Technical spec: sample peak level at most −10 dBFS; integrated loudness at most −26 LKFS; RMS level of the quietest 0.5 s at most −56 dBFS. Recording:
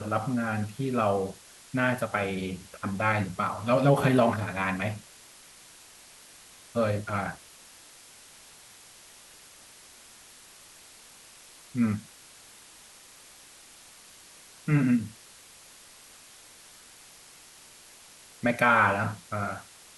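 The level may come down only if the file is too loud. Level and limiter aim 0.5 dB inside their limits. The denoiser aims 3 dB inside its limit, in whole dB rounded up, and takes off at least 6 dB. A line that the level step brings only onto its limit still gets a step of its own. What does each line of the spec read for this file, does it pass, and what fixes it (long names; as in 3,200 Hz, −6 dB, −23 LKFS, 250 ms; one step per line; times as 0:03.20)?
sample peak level −8.5 dBFS: out of spec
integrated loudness −27.5 LKFS: in spec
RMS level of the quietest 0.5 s −52 dBFS: out of spec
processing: broadband denoise 7 dB, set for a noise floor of −52 dBFS
brickwall limiter −10.5 dBFS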